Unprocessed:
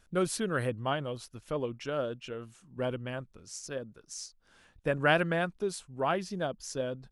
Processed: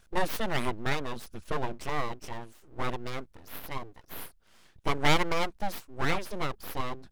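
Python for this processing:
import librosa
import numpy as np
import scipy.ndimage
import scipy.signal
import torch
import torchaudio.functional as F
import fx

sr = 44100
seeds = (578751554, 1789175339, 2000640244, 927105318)

y = fx.low_shelf(x, sr, hz=90.0, db=11.0, at=(1.16, 2.06))
y = np.abs(y)
y = F.gain(torch.from_numpy(y), 4.0).numpy()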